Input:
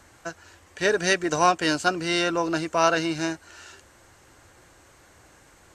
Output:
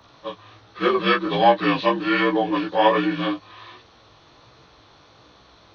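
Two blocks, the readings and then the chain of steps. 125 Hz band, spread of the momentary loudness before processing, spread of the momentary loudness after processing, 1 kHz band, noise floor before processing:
+3.0 dB, 17 LU, 15 LU, +4.5 dB, -55 dBFS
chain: inharmonic rescaling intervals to 81%; chorus 1.3 Hz, delay 15.5 ms, depth 5.4 ms; gain +7.5 dB

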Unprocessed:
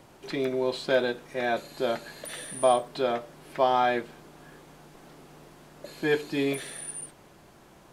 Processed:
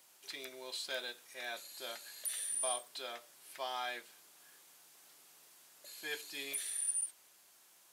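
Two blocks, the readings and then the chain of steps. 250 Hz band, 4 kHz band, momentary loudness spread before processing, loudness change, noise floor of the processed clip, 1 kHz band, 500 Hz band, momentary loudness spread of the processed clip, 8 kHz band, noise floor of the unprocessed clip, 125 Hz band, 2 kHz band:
-26.5 dB, -5.0 dB, 15 LU, -11.0 dB, -65 dBFS, -17.5 dB, -21.0 dB, 24 LU, +2.5 dB, -55 dBFS, under -30 dB, -11.0 dB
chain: differentiator; gain +1 dB

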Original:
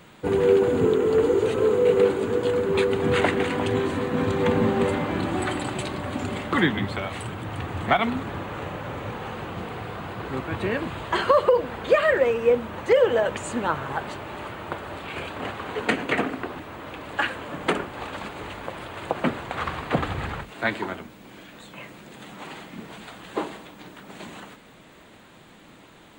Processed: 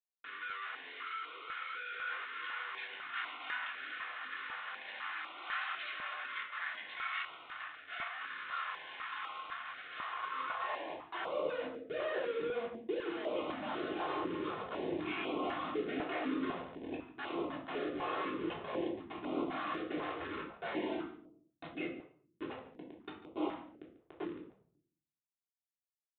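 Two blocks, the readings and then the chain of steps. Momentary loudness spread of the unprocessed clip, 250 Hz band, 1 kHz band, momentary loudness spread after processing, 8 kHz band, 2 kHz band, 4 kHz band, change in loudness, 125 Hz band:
19 LU, -13.5 dB, -11.5 dB, 8 LU, under -35 dB, -10.5 dB, -10.5 dB, -15.0 dB, -25.5 dB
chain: spectral noise reduction 14 dB; reverse; compressor 5:1, threshold -35 dBFS, peak gain reduction 19.5 dB; reverse; Schmitt trigger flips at -44.5 dBFS; high-pass sweep 1500 Hz -> 340 Hz, 9.91–11.74; air absorption 94 m; on a send: echo 0.143 s -17.5 dB; on the sum: shoebox room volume 620 m³, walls furnished, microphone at 3.3 m; downsampling 8000 Hz; stepped notch 4 Hz 230–1700 Hz; gain -2 dB

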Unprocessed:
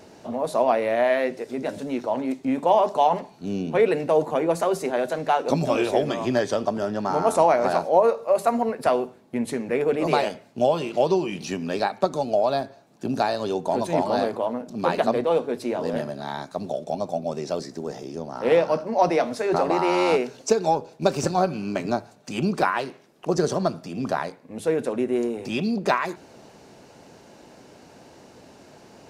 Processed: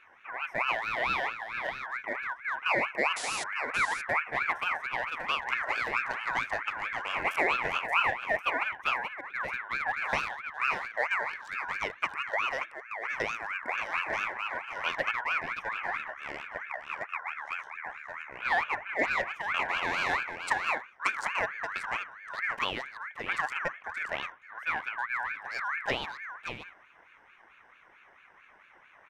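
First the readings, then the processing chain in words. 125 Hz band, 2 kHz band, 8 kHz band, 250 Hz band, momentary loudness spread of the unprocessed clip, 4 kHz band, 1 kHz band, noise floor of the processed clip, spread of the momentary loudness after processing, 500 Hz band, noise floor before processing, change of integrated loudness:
-19.0 dB, +5.5 dB, -8.0 dB, -21.5 dB, 10 LU, -2.0 dB, -7.5 dB, -59 dBFS, 9 LU, -18.0 dB, -50 dBFS, -7.5 dB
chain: Wiener smoothing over 15 samples; painted sound noise, 3.16–3.44, 1700–9300 Hz -28 dBFS; on a send: echo 0.577 s -8 dB; on the sum: ring modulator with a swept carrier 1600 Hz, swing 25%, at 4.5 Hz; gain -6.5 dB

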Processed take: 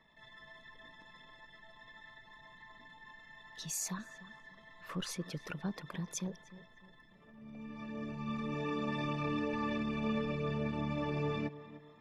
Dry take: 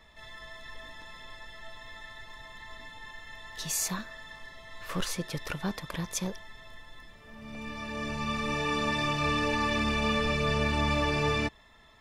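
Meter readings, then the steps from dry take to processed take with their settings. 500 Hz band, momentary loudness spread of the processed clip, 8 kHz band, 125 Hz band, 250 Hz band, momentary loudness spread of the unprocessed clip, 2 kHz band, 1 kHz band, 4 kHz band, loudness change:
-6.5 dB, 20 LU, -7.5 dB, -6.0 dB, -4.0 dB, 19 LU, -12.5 dB, -10.5 dB, -13.0 dB, -8.0 dB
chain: formant sharpening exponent 1.5; resonant low shelf 110 Hz -10.5 dB, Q 1.5; tape echo 0.299 s, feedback 45%, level -13.5 dB, low-pass 1600 Hz; gain -7.5 dB

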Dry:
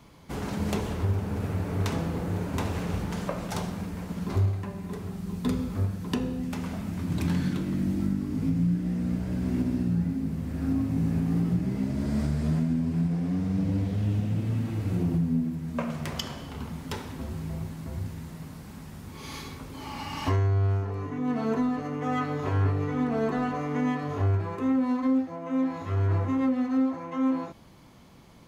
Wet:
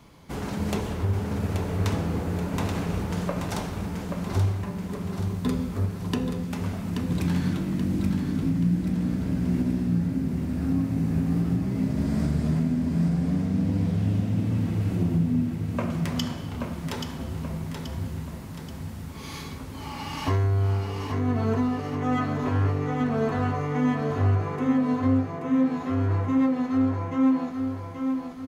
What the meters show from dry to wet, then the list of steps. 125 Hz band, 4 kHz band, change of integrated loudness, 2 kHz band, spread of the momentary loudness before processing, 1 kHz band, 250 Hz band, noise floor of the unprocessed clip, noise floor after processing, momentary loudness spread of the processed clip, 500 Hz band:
+2.5 dB, +2.0 dB, +2.5 dB, +2.0 dB, 10 LU, +2.0 dB, +2.5 dB, -43 dBFS, -37 dBFS, 9 LU, +2.0 dB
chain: feedback echo 0.83 s, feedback 47%, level -6 dB; gain +1 dB

